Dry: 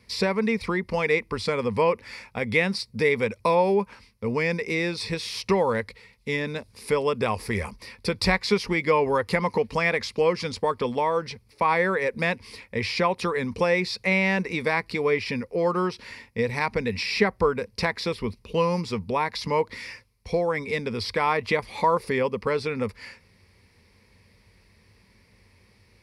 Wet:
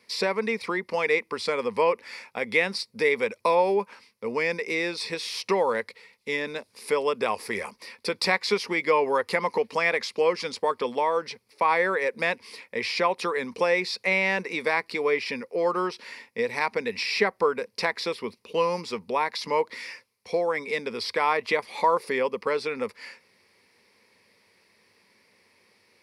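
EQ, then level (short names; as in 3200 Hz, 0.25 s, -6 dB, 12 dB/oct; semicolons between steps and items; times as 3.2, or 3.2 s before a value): HPF 330 Hz 12 dB/oct; 0.0 dB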